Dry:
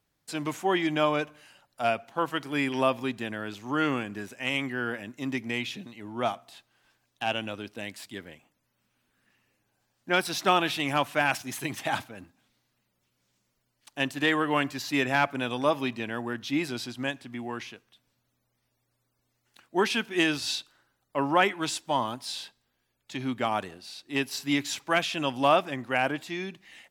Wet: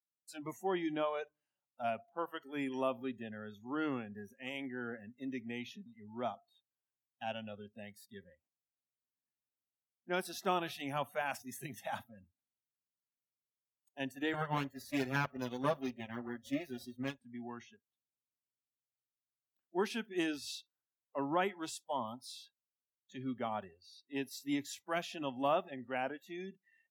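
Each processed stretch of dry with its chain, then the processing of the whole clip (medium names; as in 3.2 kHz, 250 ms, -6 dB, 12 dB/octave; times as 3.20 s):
14.33–17.18 s: comb filter that takes the minimum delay 7.8 ms + transient shaper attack +4 dB, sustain -3 dB
whole clip: spectral noise reduction 25 dB; high-pass 88 Hz; peaking EQ 2.8 kHz -7.5 dB 2.9 oct; trim -7.5 dB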